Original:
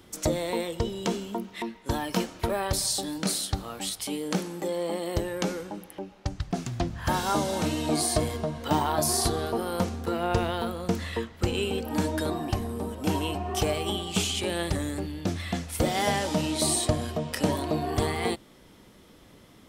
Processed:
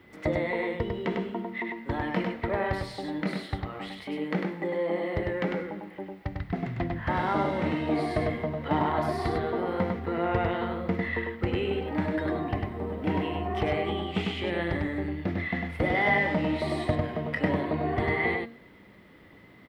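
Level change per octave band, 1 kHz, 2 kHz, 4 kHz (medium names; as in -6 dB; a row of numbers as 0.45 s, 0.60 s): 0.0 dB, +5.5 dB, -9.0 dB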